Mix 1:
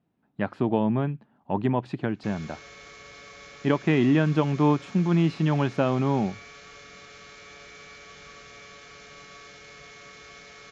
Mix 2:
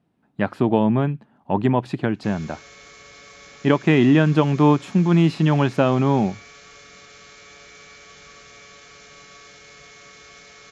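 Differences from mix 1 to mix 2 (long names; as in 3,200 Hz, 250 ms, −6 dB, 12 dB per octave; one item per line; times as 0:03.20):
speech +5.5 dB
master: remove high-frequency loss of the air 66 metres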